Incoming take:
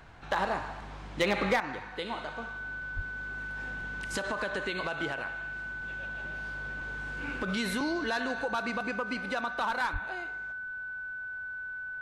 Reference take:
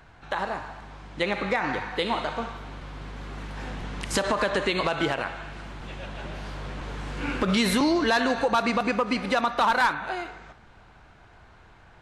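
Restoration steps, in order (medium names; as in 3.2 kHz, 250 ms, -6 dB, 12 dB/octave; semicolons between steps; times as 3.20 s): clip repair -19.5 dBFS; band-stop 1.5 kHz, Q 30; de-plosive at 2.95/9.92 s; gain correction +9.5 dB, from 1.60 s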